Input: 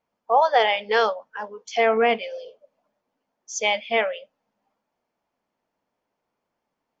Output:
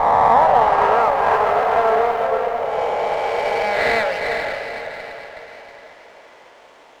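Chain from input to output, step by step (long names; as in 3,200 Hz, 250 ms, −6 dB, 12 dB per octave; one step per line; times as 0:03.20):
peak hold with a rise ahead of every peak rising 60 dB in 1.95 s
camcorder AGC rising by 39 dB per second
in parallel at −1 dB: brickwall limiter −10.5 dBFS, peak gain reduction 8.5 dB
on the sum: low-pass filter sweep 1,100 Hz → 3,700 Hz, 0:02.84–0:05.56
0:01.00–0:02.25: bit-depth reduction 8 bits, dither none
four-pole ladder high-pass 310 Hz, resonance 20%
on a send: feedback delay with all-pass diffusion 454 ms, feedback 48%, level −4 dB
on the sum: windowed peak hold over 5 samples
level −3.5 dB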